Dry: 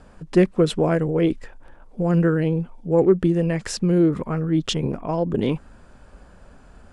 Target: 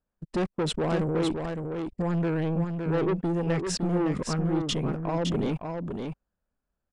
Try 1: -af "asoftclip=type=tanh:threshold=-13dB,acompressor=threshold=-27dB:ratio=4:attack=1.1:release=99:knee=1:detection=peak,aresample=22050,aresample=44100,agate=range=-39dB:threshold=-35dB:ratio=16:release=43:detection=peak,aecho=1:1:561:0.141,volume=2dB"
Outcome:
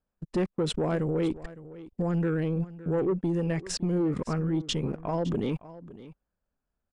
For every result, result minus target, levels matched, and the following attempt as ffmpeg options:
echo-to-direct -11.5 dB; soft clip: distortion -7 dB
-af "asoftclip=type=tanh:threshold=-13dB,acompressor=threshold=-27dB:ratio=4:attack=1.1:release=99:knee=1:detection=peak,aresample=22050,aresample=44100,agate=range=-39dB:threshold=-35dB:ratio=16:release=43:detection=peak,aecho=1:1:561:0.531,volume=2dB"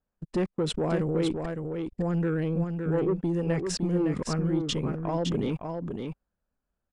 soft clip: distortion -7 dB
-af "asoftclip=type=tanh:threshold=-21dB,acompressor=threshold=-27dB:ratio=4:attack=1.1:release=99:knee=1:detection=peak,aresample=22050,aresample=44100,agate=range=-39dB:threshold=-35dB:ratio=16:release=43:detection=peak,aecho=1:1:561:0.531,volume=2dB"

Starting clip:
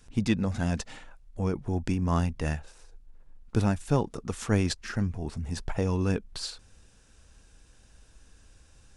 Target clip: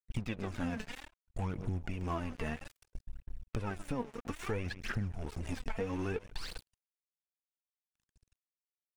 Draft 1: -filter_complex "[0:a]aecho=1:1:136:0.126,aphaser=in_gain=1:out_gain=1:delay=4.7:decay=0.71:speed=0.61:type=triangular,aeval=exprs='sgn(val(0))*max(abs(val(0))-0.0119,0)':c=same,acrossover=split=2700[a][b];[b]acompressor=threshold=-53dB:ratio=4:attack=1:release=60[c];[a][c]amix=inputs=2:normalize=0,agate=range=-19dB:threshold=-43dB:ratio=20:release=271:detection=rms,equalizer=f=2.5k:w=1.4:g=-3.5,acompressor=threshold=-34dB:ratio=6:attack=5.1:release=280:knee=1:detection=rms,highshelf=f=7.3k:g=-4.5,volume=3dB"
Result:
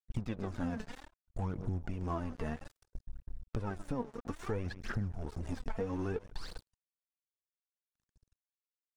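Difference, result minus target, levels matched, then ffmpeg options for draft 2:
8000 Hz band -5.0 dB; 2000 Hz band -4.5 dB
-filter_complex "[0:a]aecho=1:1:136:0.126,aphaser=in_gain=1:out_gain=1:delay=4.7:decay=0.71:speed=0.61:type=triangular,aeval=exprs='sgn(val(0))*max(abs(val(0))-0.0119,0)':c=same,acrossover=split=2700[a][b];[b]acompressor=threshold=-53dB:ratio=4:attack=1:release=60[c];[a][c]amix=inputs=2:normalize=0,agate=range=-19dB:threshold=-43dB:ratio=20:release=271:detection=rms,equalizer=f=2.5k:w=1.4:g=5.5,acompressor=threshold=-34dB:ratio=6:attack=5.1:release=280:knee=1:detection=rms,highshelf=f=7.3k:g=5,volume=3dB"

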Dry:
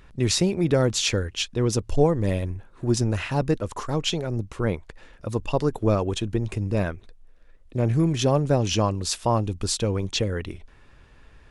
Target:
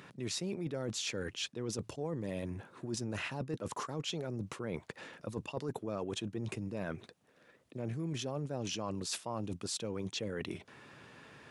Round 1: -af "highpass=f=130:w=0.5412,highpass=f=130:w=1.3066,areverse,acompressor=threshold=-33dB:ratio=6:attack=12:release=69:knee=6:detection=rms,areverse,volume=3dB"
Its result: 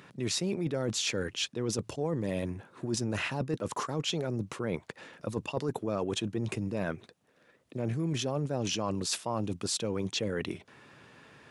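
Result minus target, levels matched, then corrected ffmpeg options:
compressor: peak gain reduction -6 dB
-af "highpass=f=130:w=0.5412,highpass=f=130:w=1.3066,areverse,acompressor=threshold=-40.5dB:ratio=6:attack=12:release=69:knee=6:detection=rms,areverse,volume=3dB"

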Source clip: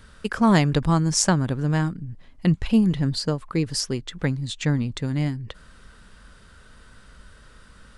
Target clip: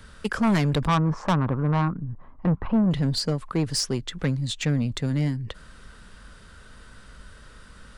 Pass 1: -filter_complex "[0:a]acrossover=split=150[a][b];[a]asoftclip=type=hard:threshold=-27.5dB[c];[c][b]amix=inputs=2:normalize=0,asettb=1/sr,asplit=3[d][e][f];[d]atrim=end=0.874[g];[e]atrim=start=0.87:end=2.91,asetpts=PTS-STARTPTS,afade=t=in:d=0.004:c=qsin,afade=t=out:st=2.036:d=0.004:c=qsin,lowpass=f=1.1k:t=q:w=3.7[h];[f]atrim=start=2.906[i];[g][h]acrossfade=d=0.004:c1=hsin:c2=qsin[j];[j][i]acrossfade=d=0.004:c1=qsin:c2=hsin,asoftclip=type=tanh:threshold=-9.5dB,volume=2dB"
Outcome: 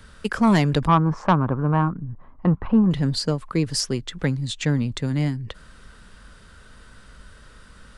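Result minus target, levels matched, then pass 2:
soft clip: distortion -8 dB
-filter_complex "[0:a]acrossover=split=150[a][b];[a]asoftclip=type=hard:threshold=-27.5dB[c];[c][b]amix=inputs=2:normalize=0,asettb=1/sr,asplit=3[d][e][f];[d]atrim=end=0.874[g];[e]atrim=start=0.87:end=2.91,asetpts=PTS-STARTPTS,afade=t=in:d=0.004:c=qsin,afade=t=out:st=2.036:d=0.004:c=qsin,lowpass=f=1.1k:t=q:w=3.7[h];[f]atrim=start=2.906[i];[g][h]acrossfade=d=0.004:c1=hsin:c2=qsin[j];[j][i]acrossfade=d=0.004:c1=qsin:c2=hsin,asoftclip=type=tanh:threshold=-18.5dB,volume=2dB"

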